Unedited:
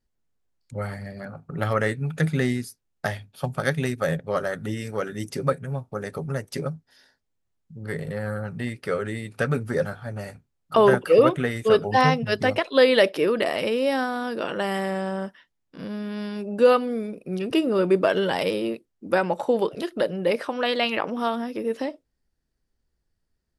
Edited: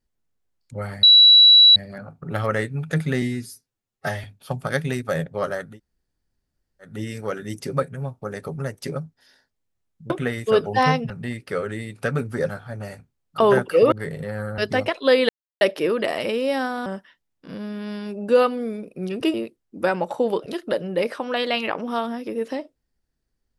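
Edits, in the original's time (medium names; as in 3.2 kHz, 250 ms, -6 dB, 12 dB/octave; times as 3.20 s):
1.03 s: add tone 3.92 kHz -7.5 dBFS 0.73 s
2.49–3.17 s: stretch 1.5×
4.61 s: insert room tone 1.23 s, crossfade 0.24 s
7.80–8.46 s: swap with 11.28–12.28 s
12.99 s: insert silence 0.32 s
14.24–15.16 s: delete
17.64–18.63 s: delete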